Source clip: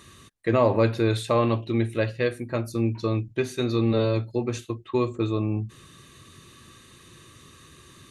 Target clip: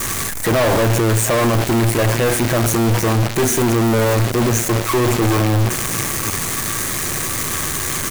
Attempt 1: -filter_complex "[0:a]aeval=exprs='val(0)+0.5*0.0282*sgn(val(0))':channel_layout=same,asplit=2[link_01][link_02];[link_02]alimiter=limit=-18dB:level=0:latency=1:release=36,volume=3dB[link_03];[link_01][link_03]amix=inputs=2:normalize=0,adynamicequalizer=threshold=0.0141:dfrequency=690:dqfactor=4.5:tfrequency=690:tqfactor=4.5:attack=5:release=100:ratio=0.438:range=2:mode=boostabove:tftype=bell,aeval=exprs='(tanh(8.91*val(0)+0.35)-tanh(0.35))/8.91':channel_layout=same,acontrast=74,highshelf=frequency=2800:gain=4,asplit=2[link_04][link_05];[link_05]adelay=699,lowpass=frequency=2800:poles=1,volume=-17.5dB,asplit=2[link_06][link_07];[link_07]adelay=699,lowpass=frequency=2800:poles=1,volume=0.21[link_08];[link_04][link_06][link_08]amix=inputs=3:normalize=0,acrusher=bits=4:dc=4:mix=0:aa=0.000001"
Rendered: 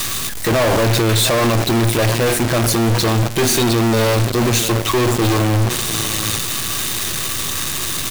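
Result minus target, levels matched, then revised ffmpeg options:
4,000 Hz band +5.5 dB
-filter_complex "[0:a]aeval=exprs='val(0)+0.5*0.0282*sgn(val(0))':channel_layout=same,asplit=2[link_01][link_02];[link_02]alimiter=limit=-18dB:level=0:latency=1:release=36,volume=3dB[link_03];[link_01][link_03]amix=inputs=2:normalize=0,adynamicequalizer=threshold=0.0141:dfrequency=690:dqfactor=4.5:tfrequency=690:tqfactor=4.5:attack=5:release=100:ratio=0.438:range=2:mode=boostabove:tftype=bell,asuperstop=centerf=3700:order=12:qfactor=1.1,aeval=exprs='(tanh(8.91*val(0)+0.35)-tanh(0.35))/8.91':channel_layout=same,acontrast=74,highshelf=frequency=2800:gain=4,asplit=2[link_04][link_05];[link_05]adelay=699,lowpass=frequency=2800:poles=1,volume=-17.5dB,asplit=2[link_06][link_07];[link_07]adelay=699,lowpass=frequency=2800:poles=1,volume=0.21[link_08];[link_04][link_06][link_08]amix=inputs=3:normalize=0,acrusher=bits=4:dc=4:mix=0:aa=0.000001"

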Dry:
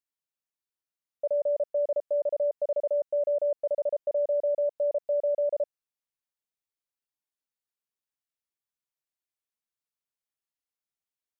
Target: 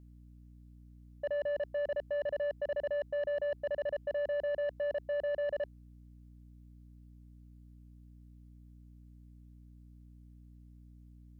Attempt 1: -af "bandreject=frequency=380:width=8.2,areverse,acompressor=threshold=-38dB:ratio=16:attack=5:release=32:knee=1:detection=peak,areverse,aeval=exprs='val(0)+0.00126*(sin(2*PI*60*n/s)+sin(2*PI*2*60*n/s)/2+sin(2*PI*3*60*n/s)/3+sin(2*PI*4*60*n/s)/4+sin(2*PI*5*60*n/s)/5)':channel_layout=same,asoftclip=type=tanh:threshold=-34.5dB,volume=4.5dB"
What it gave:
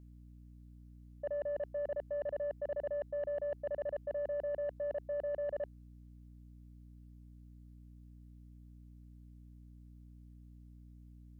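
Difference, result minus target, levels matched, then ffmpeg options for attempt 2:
downward compressor: peak gain reduction +6.5 dB
-af "bandreject=frequency=380:width=8.2,areverse,acompressor=threshold=-31dB:ratio=16:attack=5:release=32:knee=1:detection=peak,areverse,aeval=exprs='val(0)+0.00126*(sin(2*PI*60*n/s)+sin(2*PI*2*60*n/s)/2+sin(2*PI*3*60*n/s)/3+sin(2*PI*4*60*n/s)/4+sin(2*PI*5*60*n/s)/5)':channel_layout=same,asoftclip=type=tanh:threshold=-34.5dB,volume=4.5dB"

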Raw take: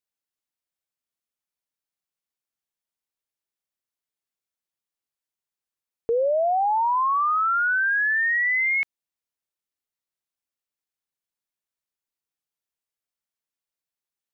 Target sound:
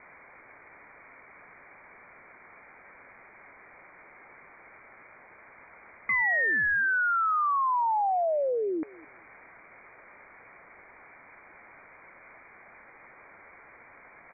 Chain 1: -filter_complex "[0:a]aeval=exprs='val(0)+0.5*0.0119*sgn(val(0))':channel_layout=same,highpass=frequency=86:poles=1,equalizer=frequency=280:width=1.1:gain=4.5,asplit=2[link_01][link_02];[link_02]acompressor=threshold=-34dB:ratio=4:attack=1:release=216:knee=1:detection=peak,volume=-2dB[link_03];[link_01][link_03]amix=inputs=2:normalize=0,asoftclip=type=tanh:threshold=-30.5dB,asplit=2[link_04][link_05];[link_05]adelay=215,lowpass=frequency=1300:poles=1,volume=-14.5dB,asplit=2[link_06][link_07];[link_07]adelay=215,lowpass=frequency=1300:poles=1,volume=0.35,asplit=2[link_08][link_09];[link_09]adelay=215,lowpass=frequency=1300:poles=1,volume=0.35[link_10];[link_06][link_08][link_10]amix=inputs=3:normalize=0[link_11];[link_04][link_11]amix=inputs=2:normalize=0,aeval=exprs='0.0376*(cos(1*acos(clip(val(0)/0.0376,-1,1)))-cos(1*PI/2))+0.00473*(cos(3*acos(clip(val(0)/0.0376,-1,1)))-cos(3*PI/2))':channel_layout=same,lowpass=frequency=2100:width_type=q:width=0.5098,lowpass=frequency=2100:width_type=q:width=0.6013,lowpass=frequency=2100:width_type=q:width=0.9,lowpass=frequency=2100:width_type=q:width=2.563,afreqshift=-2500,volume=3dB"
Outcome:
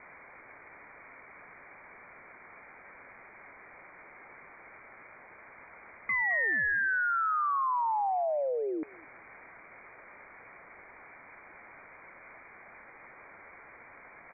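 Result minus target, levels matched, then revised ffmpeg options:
downward compressor: peak gain reduction −9 dB; soft clipping: distortion +7 dB
-filter_complex "[0:a]aeval=exprs='val(0)+0.5*0.0119*sgn(val(0))':channel_layout=same,highpass=frequency=86:poles=1,equalizer=frequency=280:width=1.1:gain=4.5,asplit=2[link_01][link_02];[link_02]acompressor=threshold=-46dB:ratio=4:attack=1:release=216:knee=1:detection=peak,volume=-2dB[link_03];[link_01][link_03]amix=inputs=2:normalize=0,asoftclip=type=tanh:threshold=-24dB,asplit=2[link_04][link_05];[link_05]adelay=215,lowpass=frequency=1300:poles=1,volume=-14.5dB,asplit=2[link_06][link_07];[link_07]adelay=215,lowpass=frequency=1300:poles=1,volume=0.35,asplit=2[link_08][link_09];[link_09]adelay=215,lowpass=frequency=1300:poles=1,volume=0.35[link_10];[link_06][link_08][link_10]amix=inputs=3:normalize=0[link_11];[link_04][link_11]amix=inputs=2:normalize=0,aeval=exprs='0.0376*(cos(1*acos(clip(val(0)/0.0376,-1,1)))-cos(1*PI/2))+0.00473*(cos(3*acos(clip(val(0)/0.0376,-1,1)))-cos(3*PI/2))':channel_layout=same,lowpass=frequency=2100:width_type=q:width=0.5098,lowpass=frequency=2100:width_type=q:width=0.6013,lowpass=frequency=2100:width_type=q:width=0.9,lowpass=frequency=2100:width_type=q:width=2.563,afreqshift=-2500,volume=3dB"

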